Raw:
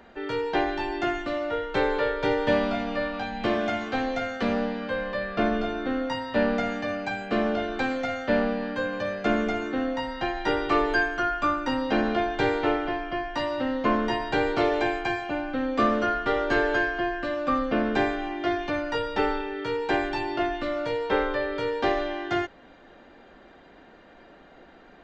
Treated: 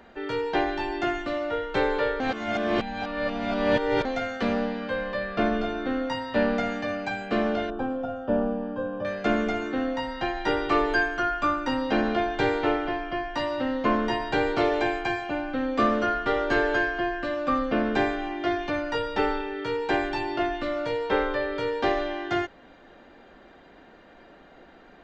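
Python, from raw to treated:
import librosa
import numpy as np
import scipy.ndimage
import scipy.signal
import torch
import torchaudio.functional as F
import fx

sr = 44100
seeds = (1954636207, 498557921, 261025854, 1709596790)

y = fx.moving_average(x, sr, points=21, at=(7.7, 9.05))
y = fx.edit(y, sr, fx.reverse_span(start_s=2.2, length_s=1.85), tone=tone)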